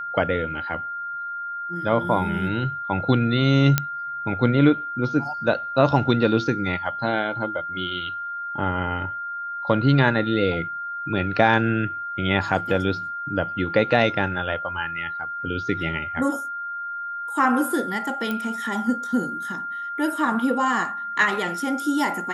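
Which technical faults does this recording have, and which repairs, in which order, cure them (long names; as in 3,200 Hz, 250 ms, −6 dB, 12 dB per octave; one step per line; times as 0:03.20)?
whistle 1,400 Hz −28 dBFS
0:03.78: click −3 dBFS
0:18.31: click −14 dBFS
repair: click removal
notch filter 1,400 Hz, Q 30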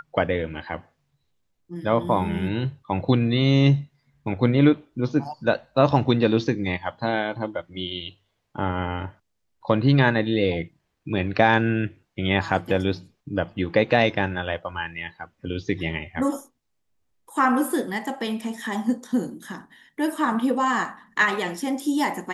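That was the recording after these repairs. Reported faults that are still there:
none of them is left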